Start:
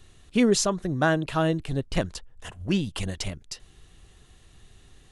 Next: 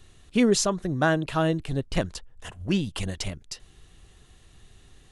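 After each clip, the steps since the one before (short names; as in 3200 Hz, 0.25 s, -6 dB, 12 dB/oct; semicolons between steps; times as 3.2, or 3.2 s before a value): nothing audible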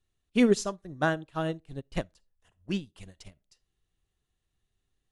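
reverb RT60 0.40 s, pre-delay 5 ms, DRR 18 dB; upward expander 2.5:1, over -35 dBFS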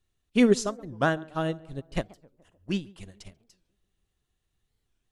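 tape echo 0.142 s, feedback 62%, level -20.5 dB, low-pass 1300 Hz; record warp 45 rpm, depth 250 cents; gain +2 dB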